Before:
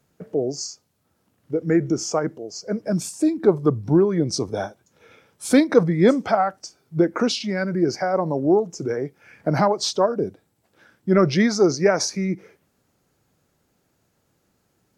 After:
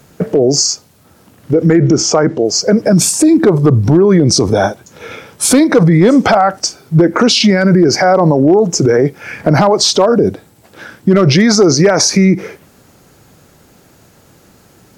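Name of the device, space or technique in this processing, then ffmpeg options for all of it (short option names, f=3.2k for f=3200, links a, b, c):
loud club master: -filter_complex "[0:a]acompressor=threshold=-20dB:ratio=2.5,asoftclip=type=hard:threshold=-14.5dB,alimiter=level_in=23dB:limit=-1dB:release=50:level=0:latency=1,asettb=1/sr,asplit=3[a][b][c];[a]atrim=end=1.764[d];[b]atrim=start=1.76:end=2.45,asetpts=PTS-STARTPTS,afade=t=in:d=0.004:c=qsin,afade=t=out:st=0.686:d=0.004:c=qsin,lowpass=5.9k[e];[c]atrim=start=2.446[f];[d][e]acrossfade=d=0.004:c1=hsin:c2=qsin[g];[g][f]acrossfade=d=0.004:c1=qsin:c2=hsin,volume=-1dB"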